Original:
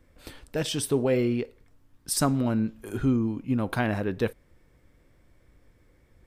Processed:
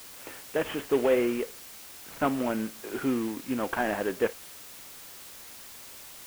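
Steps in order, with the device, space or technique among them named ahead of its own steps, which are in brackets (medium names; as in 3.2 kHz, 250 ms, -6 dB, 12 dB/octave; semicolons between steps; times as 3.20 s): army field radio (band-pass 360–2800 Hz; CVSD coder 16 kbps; white noise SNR 15 dB); trim +3.5 dB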